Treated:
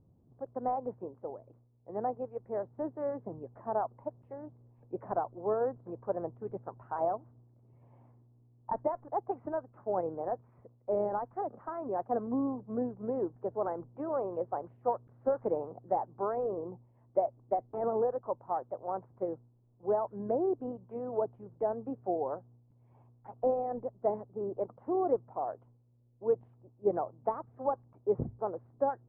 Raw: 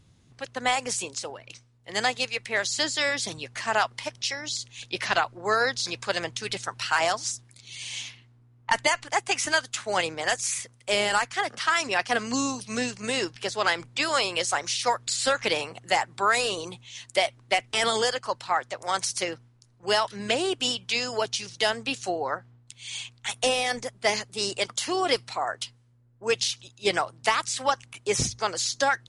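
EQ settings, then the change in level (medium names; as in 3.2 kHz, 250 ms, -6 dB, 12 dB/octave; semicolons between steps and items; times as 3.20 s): Bessel low-pass 520 Hz, order 6; bass shelf 240 Hz -10 dB; +2.5 dB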